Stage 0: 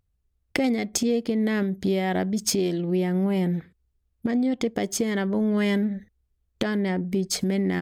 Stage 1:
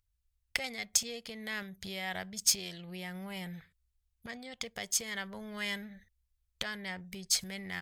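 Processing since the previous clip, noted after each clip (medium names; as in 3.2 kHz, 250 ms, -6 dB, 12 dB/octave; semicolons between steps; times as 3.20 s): amplifier tone stack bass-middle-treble 10-0-10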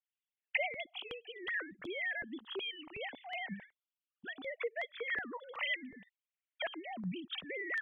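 formants replaced by sine waves; compression 1.5:1, threshold -39 dBFS, peak gain reduction 5 dB; stepped phaser 2.7 Hz 340–2900 Hz; trim +3 dB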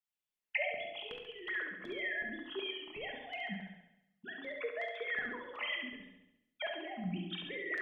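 flutter echo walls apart 11.8 m, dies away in 0.83 s; reverberation RT60 0.60 s, pre-delay 5 ms, DRR 4 dB; trim -3 dB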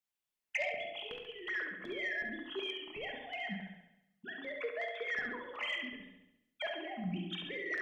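saturation -27 dBFS, distortion -23 dB; trim +1 dB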